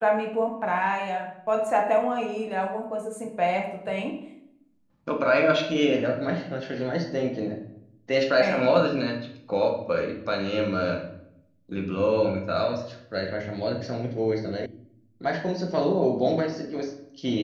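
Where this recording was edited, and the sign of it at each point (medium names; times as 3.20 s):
14.66 s: sound stops dead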